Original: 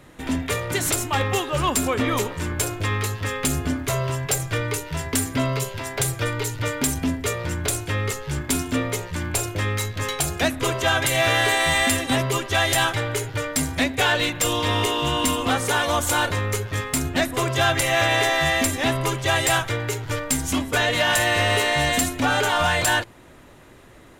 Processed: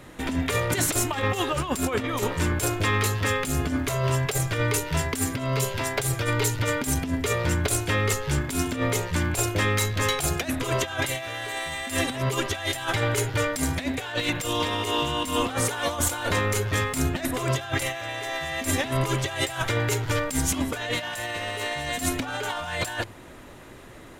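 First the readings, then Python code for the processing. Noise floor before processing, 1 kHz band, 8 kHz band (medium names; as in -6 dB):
-47 dBFS, -5.0 dB, -3.5 dB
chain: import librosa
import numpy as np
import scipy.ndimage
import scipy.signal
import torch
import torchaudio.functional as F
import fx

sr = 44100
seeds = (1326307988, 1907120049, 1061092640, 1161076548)

y = fx.hum_notches(x, sr, base_hz=50, count=3)
y = fx.over_compress(y, sr, threshold_db=-25.0, ratio=-0.5)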